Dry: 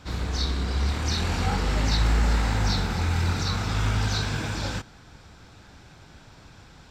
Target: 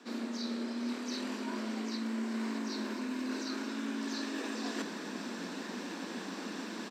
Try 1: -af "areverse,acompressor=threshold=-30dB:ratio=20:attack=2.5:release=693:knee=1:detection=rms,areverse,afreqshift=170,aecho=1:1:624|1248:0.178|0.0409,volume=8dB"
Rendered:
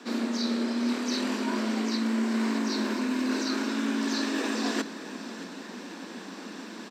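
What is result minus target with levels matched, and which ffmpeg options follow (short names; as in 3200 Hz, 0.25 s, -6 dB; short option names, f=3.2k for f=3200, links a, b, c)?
compressor: peak gain reduction -8.5 dB
-af "areverse,acompressor=threshold=-39dB:ratio=20:attack=2.5:release=693:knee=1:detection=rms,areverse,afreqshift=170,aecho=1:1:624|1248:0.178|0.0409,volume=8dB"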